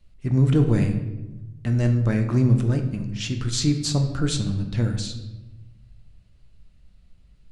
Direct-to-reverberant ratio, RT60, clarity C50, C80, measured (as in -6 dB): 5.0 dB, 1.1 s, 8.5 dB, 10.5 dB